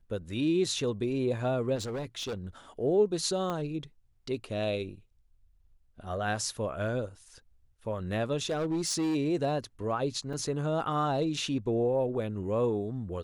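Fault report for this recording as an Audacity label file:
1.750000	2.460000	clipped -31.5 dBFS
3.500000	3.500000	pop -21 dBFS
8.500000	9.160000	clipped -26 dBFS
10.330000	10.330000	dropout 4.5 ms

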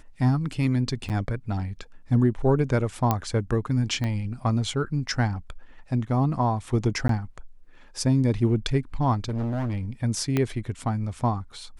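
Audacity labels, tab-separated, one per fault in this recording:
1.090000	1.100000	dropout 8.5 ms
3.110000	3.110000	pop -9 dBFS
4.040000	4.040000	pop -17 dBFS
7.080000	7.090000	dropout 13 ms
9.180000	9.820000	clipped -24.5 dBFS
10.370000	10.370000	pop -11 dBFS

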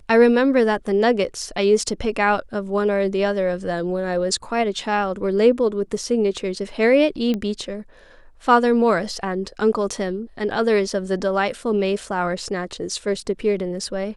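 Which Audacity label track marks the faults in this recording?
7.340000	7.340000	pop -13 dBFS

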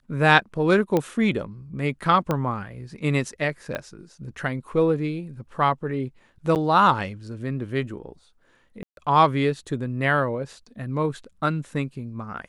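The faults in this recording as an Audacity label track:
0.970000	0.970000	pop -10 dBFS
2.310000	2.310000	pop -11 dBFS
3.750000	3.750000	pop -16 dBFS
6.550000	6.560000	dropout 8.7 ms
8.830000	8.970000	dropout 142 ms

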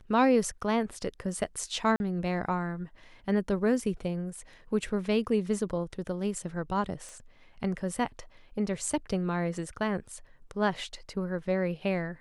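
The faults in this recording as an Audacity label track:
1.960000	2.000000	dropout 41 ms
7.090000	7.090000	pop -31 dBFS

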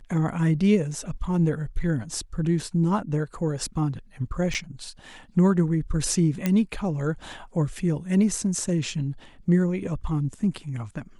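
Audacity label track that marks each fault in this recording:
4.540000	4.550000	dropout 7.5 ms
6.460000	6.460000	pop -10 dBFS

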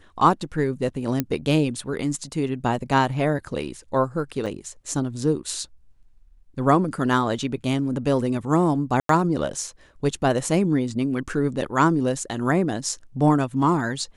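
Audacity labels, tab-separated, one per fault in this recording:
1.200000	1.200000	pop -8 dBFS
4.460000	4.470000	dropout 5.1 ms
9.000000	9.090000	dropout 93 ms

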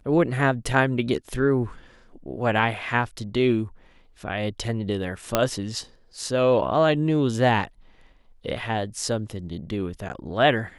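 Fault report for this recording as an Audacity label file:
5.350000	5.350000	pop -4 dBFS

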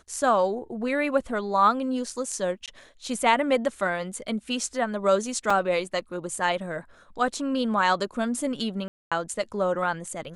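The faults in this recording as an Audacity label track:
2.660000	2.680000	dropout 17 ms
5.500000	5.500000	dropout 4 ms
8.880000	9.120000	dropout 236 ms

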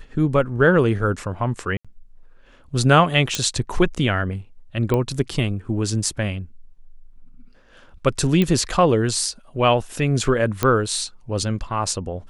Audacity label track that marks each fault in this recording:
1.770000	1.850000	dropout 76 ms
3.350000	3.350000	pop -5 dBFS
4.940000	4.940000	pop -10 dBFS
8.420000	8.420000	pop -8 dBFS
10.630000	10.630000	pop -5 dBFS

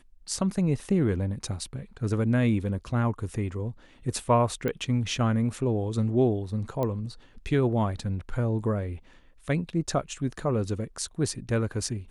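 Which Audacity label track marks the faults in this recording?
4.680000	4.680000	pop -17 dBFS
6.830000	6.830000	pop -17 dBFS

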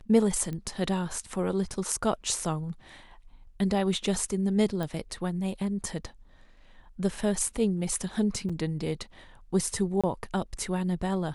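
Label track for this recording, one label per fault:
0.530000	0.530000	pop -24 dBFS
4.830000	4.830000	pop
8.490000	8.500000	dropout 5.5 ms
10.010000	10.040000	dropout 26 ms

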